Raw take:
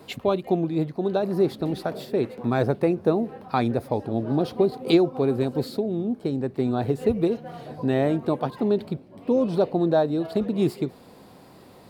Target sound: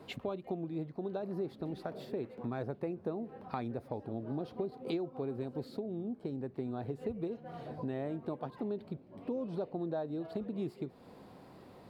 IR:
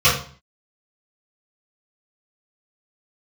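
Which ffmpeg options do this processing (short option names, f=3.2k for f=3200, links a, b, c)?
-af "highshelf=f=4.3k:g=-10.5,acompressor=threshold=-34dB:ratio=2.5,volume=-5dB"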